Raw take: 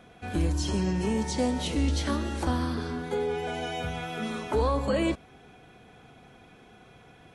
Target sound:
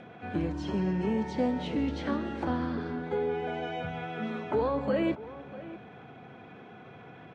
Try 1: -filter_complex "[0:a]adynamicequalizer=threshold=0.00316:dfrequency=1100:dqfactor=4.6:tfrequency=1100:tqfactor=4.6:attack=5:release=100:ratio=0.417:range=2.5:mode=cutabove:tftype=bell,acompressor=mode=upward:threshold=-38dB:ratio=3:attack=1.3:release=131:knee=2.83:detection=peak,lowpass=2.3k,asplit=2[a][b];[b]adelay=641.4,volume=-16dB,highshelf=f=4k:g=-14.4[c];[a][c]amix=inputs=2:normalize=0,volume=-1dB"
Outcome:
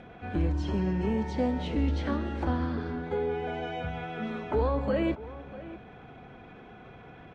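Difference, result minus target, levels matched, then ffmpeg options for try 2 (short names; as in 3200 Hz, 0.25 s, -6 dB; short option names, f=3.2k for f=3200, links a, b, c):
125 Hz band +4.0 dB
-filter_complex "[0:a]adynamicequalizer=threshold=0.00316:dfrequency=1100:dqfactor=4.6:tfrequency=1100:tqfactor=4.6:attack=5:release=100:ratio=0.417:range=2.5:mode=cutabove:tftype=bell,highpass=f=100:w=0.5412,highpass=f=100:w=1.3066,acompressor=mode=upward:threshold=-38dB:ratio=3:attack=1.3:release=131:knee=2.83:detection=peak,lowpass=2.3k,asplit=2[a][b];[b]adelay=641.4,volume=-16dB,highshelf=f=4k:g=-14.4[c];[a][c]amix=inputs=2:normalize=0,volume=-1dB"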